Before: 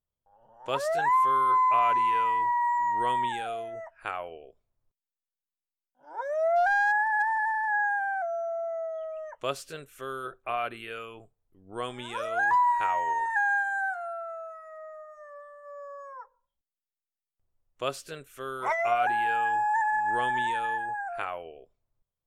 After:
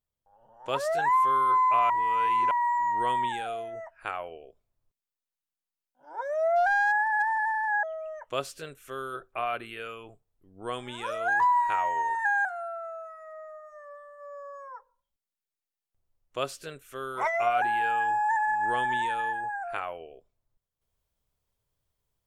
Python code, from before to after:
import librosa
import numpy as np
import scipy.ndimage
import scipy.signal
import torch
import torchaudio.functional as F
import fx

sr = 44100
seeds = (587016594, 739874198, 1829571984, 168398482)

y = fx.edit(x, sr, fx.reverse_span(start_s=1.9, length_s=0.61),
    fx.cut(start_s=7.83, length_s=1.11),
    fx.cut(start_s=13.56, length_s=0.34), tone=tone)